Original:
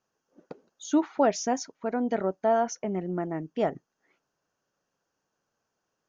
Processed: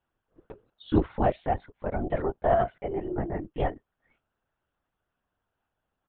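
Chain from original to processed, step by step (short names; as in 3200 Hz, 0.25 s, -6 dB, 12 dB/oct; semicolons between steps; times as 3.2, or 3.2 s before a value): comb 2.7 ms, depth 67%; LPC vocoder at 8 kHz whisper; gain -2 dB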